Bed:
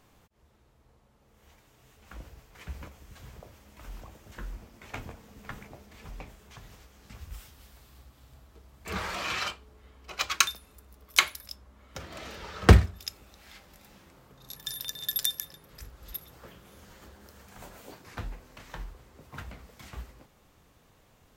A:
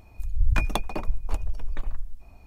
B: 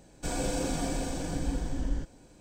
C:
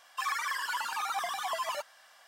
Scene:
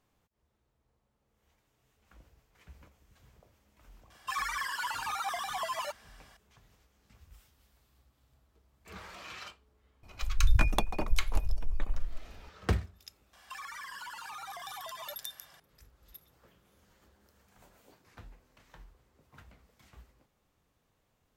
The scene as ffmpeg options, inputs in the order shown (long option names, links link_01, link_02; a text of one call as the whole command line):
ffmpeg -i bed.wav -i cue0.wav -i cue1.wav -i cue2.wav -filter_complex "[3:a]asplit=2[link_01][link_02];[0:a]volume=-13.5dB[link_03];[link_02]acompressor=threshold=-40dB:ratio=6:attack=3.2:release=140:knee=1:detection=peak[link_04];[link_01]atrim=end=2.27,asetpts=PTS-STARTPTS,volume=-1.5dB,afade=type=in:duration=0.004:curve=hsin,afade=type=out:start_time=2.266:duration=0.004:curve=hsin,adelay=4100[link_05];[1:a]atrim=end=2.46,asetpts=PTS-STARTPTS,volume=-2dB,afade=type=in:duration=0.004:curve=hsin,afade=type=out:start_time=2.456:duration=0.004:curve=hsin,adelay=10030[link_06];[link_04]atrim=end=2.27,asetpts=PTS-STARTPTS,volume=-1dB,afade=type=in:duration=0.004:curve=hsin,afade=type=out:start_time=2.266:duration=0.004:curve=hsin,adelay=13330[link_07];[link_03][link_05][link_06][link_07]amix=inputs=4:normalize=0" out.wav